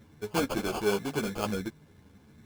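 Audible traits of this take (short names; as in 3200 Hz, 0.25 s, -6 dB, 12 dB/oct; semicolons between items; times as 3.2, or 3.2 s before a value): aliases and images of a low sample rate 1900 Hz, jitter 0%; a shimmering, thickened sound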